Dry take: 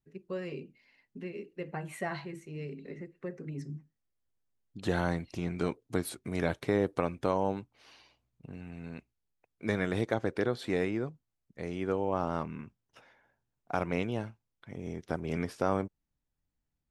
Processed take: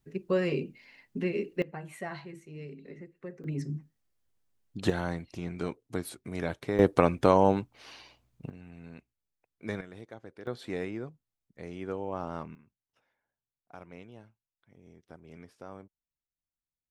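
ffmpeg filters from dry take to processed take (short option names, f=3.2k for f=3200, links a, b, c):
-af "asetnsamples=n=441:p=0,asendcmd='1.62 volume volume -3dB;3.44 volume volume 5.5dB;4.9 volume volume -2.5dB;6.79 volume volume 8dB;8.5 volume volume -4.5dB;9.81 volume volume -16dB;10.47 volume volume -4.5dB;12.55 volume volume -16.5dB',volume=10dB"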